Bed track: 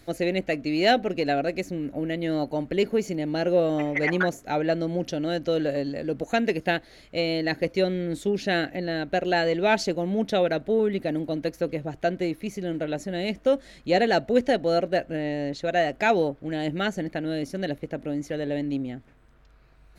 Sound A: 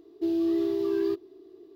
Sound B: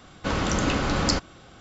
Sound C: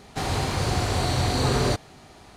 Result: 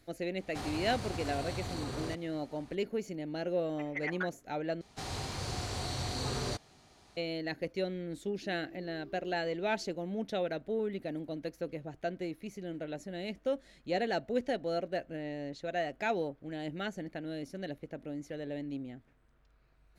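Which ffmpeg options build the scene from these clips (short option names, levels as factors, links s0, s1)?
-filter_complex "[3:a]asplit=2[s0][s1];[0:a]volume=0.282[s2];[s0]acompressor=threshold=0.0562:ratio=6:attack=3.2:release=140:knee=1:detection=peak[s3];[s1]equalizer=f=5500:w=0.83:g=5.5[s4];[1:a]acompressor=threshold=0.0112:ratio=6:attack=3.2:release=140:knee=1:detection=peak[s5];[s2]asplit=2[s6][s7];[s6]atrim=end=4.814[s8];[s4]atrim=end=2.36,asetpts=PTS-STARTPTS,volume=0.211[s9];[s7]atrim=start=7.166[s10];[s3]atrim=end=2.36,asetpts=PTS-STARTPTS,volume=0.316,afade=t=in:d=0.004:c=hsin,afade=t=out:st=2.356:d=0.004:c=hsin,adelay=390[s11];[s5]atrim=end=1.75,asetpts=PTS-STARTPTS,volume=0.237,afade=t=in:d=0.004:c=hsin,afade=t=out:st=1.746:d=0.004:c=hsin,adelay=8220[s12];[s8][s9]acrossfade=d=0.004:c1=hsin:c2=hsin[s13];[s13][s10]acrossfade=d=0.004:c1=hsin:c2=hsin[s14];[s14][s11][s12]amix=inputs=3:normalize=0"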